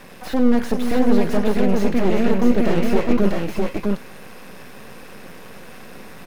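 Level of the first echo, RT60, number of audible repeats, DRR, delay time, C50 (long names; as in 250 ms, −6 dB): −15.0 dB, no reverb audible, 3, no reverb audible, 100 ms, no reverb audible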